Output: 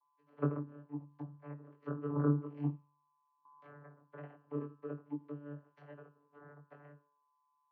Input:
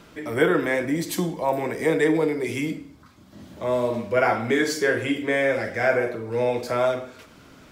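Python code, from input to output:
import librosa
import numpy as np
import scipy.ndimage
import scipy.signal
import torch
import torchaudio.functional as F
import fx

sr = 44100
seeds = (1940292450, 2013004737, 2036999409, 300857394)

y = fx.env_lowpass_down(x, sr, base_hz=540.0, full_db=-20.5)
y = fx.low_shelf(y, sr, hz=370.0, db=7.5, at=(2.14, 2.69))
y = fx.power_curve(y, sr, exponent=3.0)
y = fx.comb_fb(y, sr, f0_hz=170.0, decay_s=0.54, harmonics='all', damping=0.0, mix_pct=60)
y = y + 10.0 ** (-74.0 / 20.0) * np.sin(2.0 * np.pi * 980.0 * np.arange(len(y)) / sr)
y = fx.vocoder(y, sr, bands=32, carrier='saw', carrier_hz=145.0)
y = fx.doubler(y, sr, ms=20.0, db=-3.5)
y = fx.env_flatten(y, sr, amount_pct=70, at=(3.45, 3.88))
y = y * librosa.db_to_amplitude(4.5)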